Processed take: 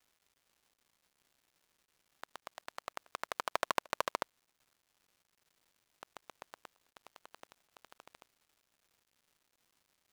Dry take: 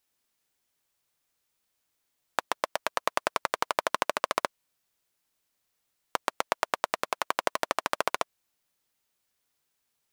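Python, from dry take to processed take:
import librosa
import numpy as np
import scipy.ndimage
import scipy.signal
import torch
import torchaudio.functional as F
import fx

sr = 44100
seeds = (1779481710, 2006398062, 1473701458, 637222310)

y = fx.doppler_pass(x, sr, speed_mps=22, closest_m=7.2, pass_at_s=3.8)
y = np.sign(y) * np.maximum(np.abs(y) - 10.0 ** (-41.5 / 20.0), 0.0)
y = fx.step_gate(y, sr, bpm=111, pattern='.xxxxxxx.xxxxx', floor_db=-24.0, edge_ms=4.5)
y = fx.dmg_crackle(y, sr, seeds[0], per_s=400.0, level_db=-55.0)
y = y * librosa.db_to_amplitude(-4.5)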